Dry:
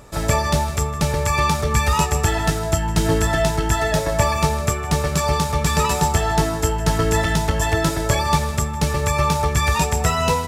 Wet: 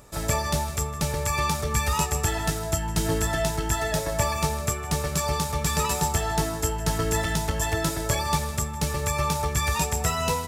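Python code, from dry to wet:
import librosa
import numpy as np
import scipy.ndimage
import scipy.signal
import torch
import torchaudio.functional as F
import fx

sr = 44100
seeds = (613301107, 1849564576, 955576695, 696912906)

y = fx.high_shelf(x, sr, hz=6400.0, db=8.0)
y = F.gain(torch.from_numpy(y), -7.0).numpy()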